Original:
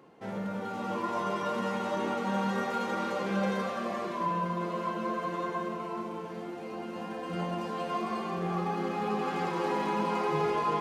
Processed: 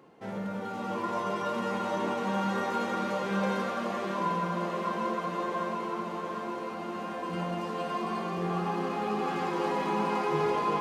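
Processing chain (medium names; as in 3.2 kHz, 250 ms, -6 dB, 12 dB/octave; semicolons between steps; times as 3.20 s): thinning echo 749 ms, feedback 75%, high-pass 200 Hz, level -7.5 dB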